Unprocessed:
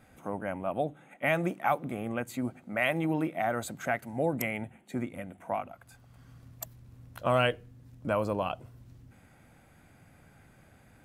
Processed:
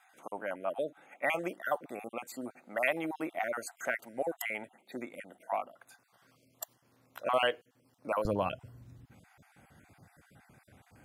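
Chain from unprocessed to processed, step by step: random spectral dropouts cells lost 30%; HPF 410 Hz 12 dB/oct, from 8.25 s 62 Hz

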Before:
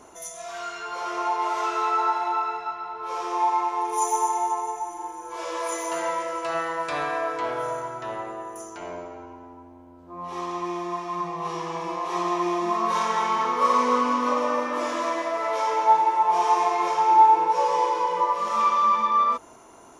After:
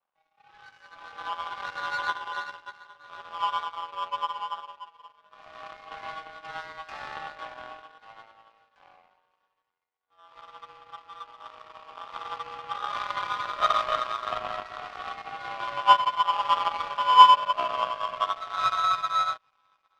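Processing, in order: mistuned SSB +130 Hz 480–3100 Hz; thin delay 0.809 s, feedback 68%, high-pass 2500 Hz, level -12 dB; power-law curve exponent 2; gain +5.5 dB

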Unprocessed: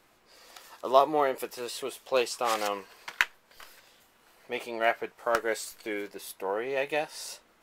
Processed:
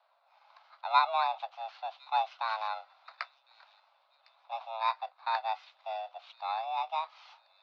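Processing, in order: FFT order left unsorted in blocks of 16 samples; bell 1500 Hz -11.5 dB 0.67 oct; thin delay 1.056 s, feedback 40%, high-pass 2900 Hz, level -18 dB; mistuned SSB +330 Hz 250–3500 Hz; gain -1.5 dB

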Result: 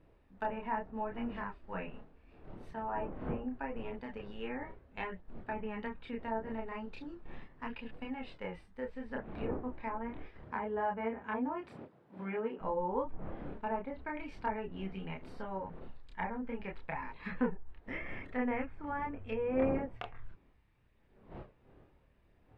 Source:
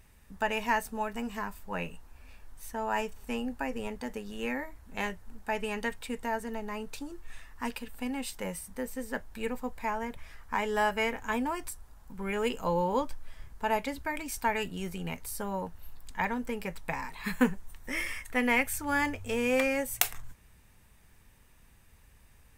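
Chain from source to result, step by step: wind noise 460 Hz -46 dBFS; gate -41 dBFS, range -7 dB; 10.4–12.59 HPF 51 Hz -> 170 Hz 24 dB/oct; treble ducked by the level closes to 1100 Hz, closed at -27.5 dBFS; high shelf 2700 Hz +11.5 dB; chorus voices 2, 0.38 Hz, delay 29 ms, depth 2.7 ms; air absorption 420 m; gain -1.5 dB

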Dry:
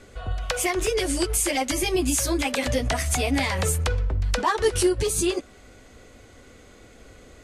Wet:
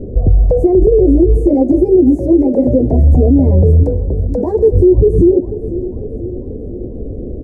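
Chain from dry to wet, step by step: inverse Chebyshev low-pass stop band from 1200 Hz, stop band 50 dB; in parallel at +1 dB: compressor, threshold -35 dBFS, peak gain reduction 17 dB; 1.54–2.93 on the sum: HPF 290 Hz 6 dB/oct; 3.83–4.72 tilt +3.5 dB/oct; feedback echo 0.493 s, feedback 58%, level -17.5 dB; on a send at -21 dB: reverb RT60 1.3 s, pre-delay 0.105 s; on the sum: maximiser +20 dB; gain -1 dB

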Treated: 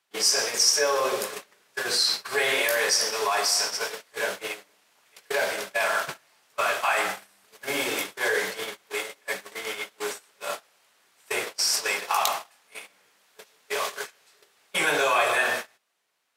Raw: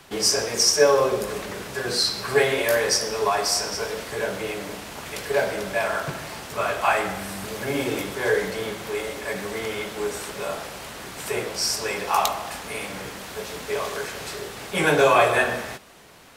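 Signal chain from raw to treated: gate -28 dBFS, range -28 dB; HPF 1200 Hz 6 dB/oct; in parallel at -3 dB: negative-ratio compressor -28 dBFS, ratio -0.5; on the sum: gain -1.5 dB

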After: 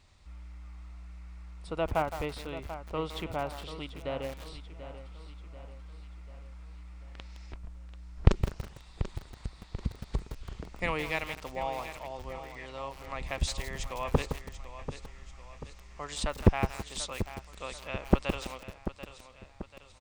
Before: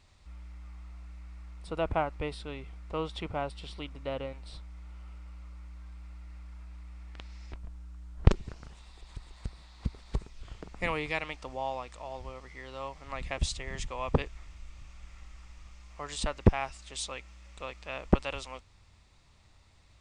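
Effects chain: feedback echo 0.738 s, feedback 48%, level -12 dB; lo-fi delay 0.164 s, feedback 35%, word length 6-bit, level -9 dB

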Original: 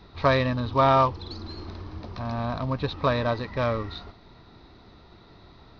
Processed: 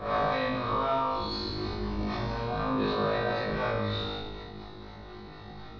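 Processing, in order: spectral swells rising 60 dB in 0.67 s; compressor 6:1, threshold -30 dBFS, peak gain reduction 15 dB; on a send at -4 dB: reverb RT60 0.70 s, pre-delay 3 ms; on the sum: harmonic tremolo 4 Hz, depth 50%, crossover 560 Hz; high shelf 5300 Hz -7.5 dB; flutter echo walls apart 3.3 m, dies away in 1.1 s; sustainer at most 22 dB/s

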